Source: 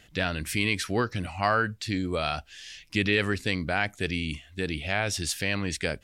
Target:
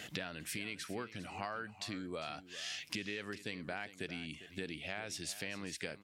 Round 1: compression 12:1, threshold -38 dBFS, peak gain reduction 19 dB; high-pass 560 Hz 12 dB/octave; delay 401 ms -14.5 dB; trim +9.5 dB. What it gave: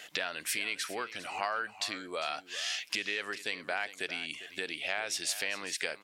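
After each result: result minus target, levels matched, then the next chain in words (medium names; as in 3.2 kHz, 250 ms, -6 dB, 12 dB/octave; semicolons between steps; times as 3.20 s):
125 Hz band -17.5 dB; compression: peak gain reduction -9 dB
compression 12:1, threshold -38 dBFS, peak gain reduction 19 dB; high-pass 160 Hz 12 dB/octave; delay 401 ms -14.5 dB; trim +9.5 dB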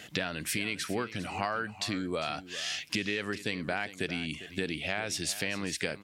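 compression: peak gain reduction -9 dB
compression 12:1, threshold -48 dBFS, peak gain reduction 28 dB; high-pass 160 Hz 12 dB/octave; delay 401 ms -14.5 dB; trim +9.5 dB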